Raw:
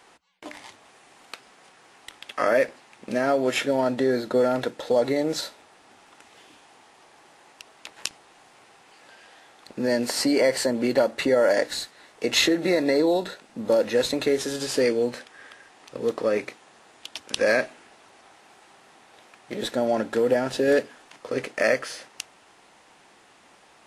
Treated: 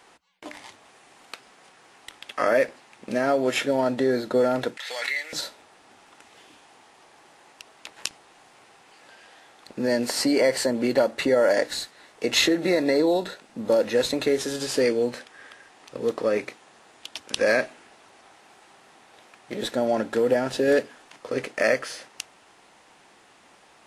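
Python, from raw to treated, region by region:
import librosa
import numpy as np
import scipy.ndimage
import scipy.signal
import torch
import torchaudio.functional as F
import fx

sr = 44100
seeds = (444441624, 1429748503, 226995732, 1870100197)

y = fx.chain(x, sr, fx.highpass_res(hz=2000.0, q=3.4),
    fx.pre_swell(db_per_s=37.0), at=(4.77, 5.33))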